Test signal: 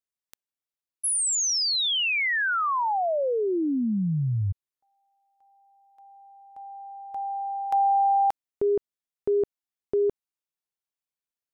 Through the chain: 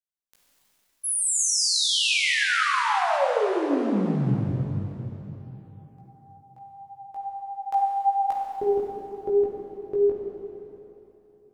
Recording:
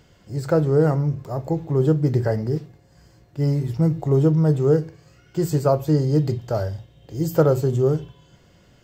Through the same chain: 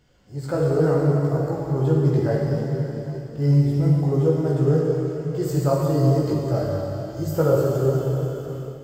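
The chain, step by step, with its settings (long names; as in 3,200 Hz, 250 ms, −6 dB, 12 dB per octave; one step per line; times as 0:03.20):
four-comb reverb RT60 3.5 s, combs from 31 ms, DRR −2 dB
multi-voice chorus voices 6, 0.66 Hz, delay 18 ms, depth 4 ms
automatic gain control gain up to 6 dB
level −5 dB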